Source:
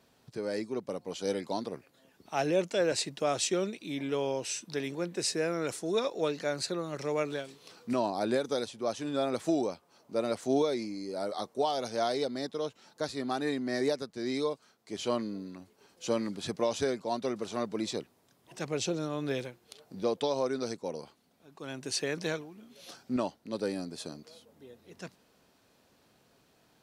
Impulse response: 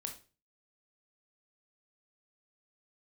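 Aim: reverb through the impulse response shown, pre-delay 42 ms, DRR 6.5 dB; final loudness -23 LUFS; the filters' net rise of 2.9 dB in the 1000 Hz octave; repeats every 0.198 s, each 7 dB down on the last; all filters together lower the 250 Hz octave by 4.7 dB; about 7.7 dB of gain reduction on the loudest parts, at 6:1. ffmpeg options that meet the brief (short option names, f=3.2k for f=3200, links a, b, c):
-filter_complex "[0:a]equalizer=f=250:t=o:g=-6.5,equalizer=f=1k:t=o:g=4.5,acompressor=threshold=-32dB:ratio=6,aecho=1:1:198|396|594|792|990:0.447|0.201|0.0905|0.0407|0.0183,asplit=2[a][b];[1:a]atrim=start_sample=2205,adelay=42[c];[b][c]afir=irnorm=-1:irlink=0,volume=-4.5dB[d];[a][d]amix=inputs=2:normalize=0,volume=13.5dB"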